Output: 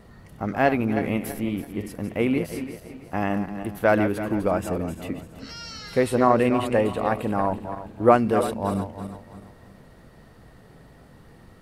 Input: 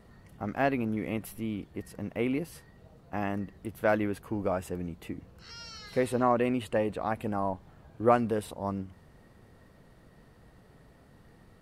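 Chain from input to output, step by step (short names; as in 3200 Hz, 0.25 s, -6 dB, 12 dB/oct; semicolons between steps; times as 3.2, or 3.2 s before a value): regenerating reverse delay 0.165 s, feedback 57%, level -9 dB; gain +6.5 dB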